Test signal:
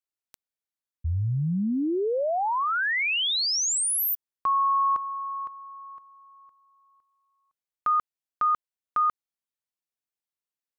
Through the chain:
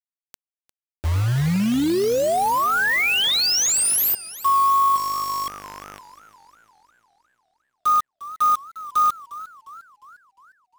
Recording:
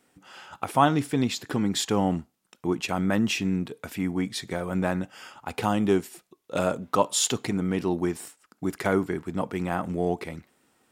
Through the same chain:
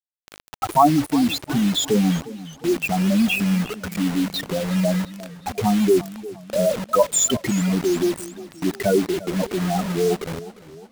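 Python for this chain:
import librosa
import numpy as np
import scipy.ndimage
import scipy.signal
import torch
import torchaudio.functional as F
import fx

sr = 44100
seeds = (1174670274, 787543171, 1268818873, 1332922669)

y = fx.spec_expand(x, sr, power=3.7)
y = fx.dmg_buzz(y, sr, base_hz=50.0, harmonics=15, level_db=-52.0, tilt_db=-1, odd_only=False)
y = fx.quant_dither(y, sr, seeds[0], bits=6, dither='none')
y = fx.echo_warbled(y, sr, ms=353, feedback_pct=50, rate_hz=2.8, cents=108, wet_db=-17)
y = y * 10.0 ** (6.5 / 20.0)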